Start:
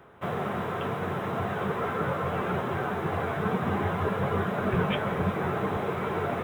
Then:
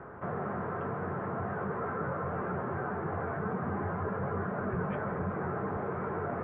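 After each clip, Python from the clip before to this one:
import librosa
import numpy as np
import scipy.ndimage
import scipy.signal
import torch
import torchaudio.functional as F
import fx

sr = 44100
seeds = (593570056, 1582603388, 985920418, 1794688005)

y = scipy.signal.sosfilt(scipy.signal.cheby1(3, 1.0, 1600.0, 'lowpass', fs=sr, output='sos'), x)
y = fx.env_flatten(y, sr, amount_pct=50)
y = y * librosa.db_to_amplitude(-8.0)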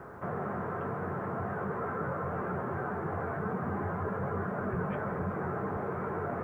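y = fx.quant_dither(x, sr, seeds[0], bits=12, dither='none')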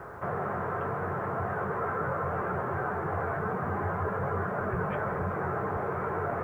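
y = fx.peak_eq(x, sr, hz=230.0, db=-8.0, octaves=1.2)
y = y * librosa.db_to_amplitude(5.0)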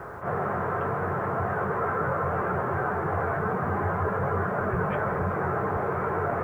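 y = fx.attack_slew(x, sr, db_per_s=160.0)
y = y * librosa.db_to_amplitude(4.0)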